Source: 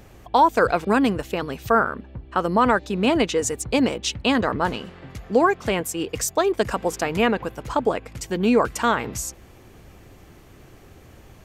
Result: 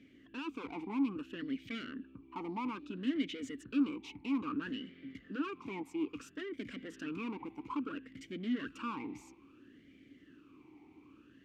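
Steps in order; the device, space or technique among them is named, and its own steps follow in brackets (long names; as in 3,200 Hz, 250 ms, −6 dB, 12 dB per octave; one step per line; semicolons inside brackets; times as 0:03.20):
talk box (tube saturation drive 26 dB, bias 0.35; formant filter swept between two vowels i-u 0.6 Hz)
level +2.5 dB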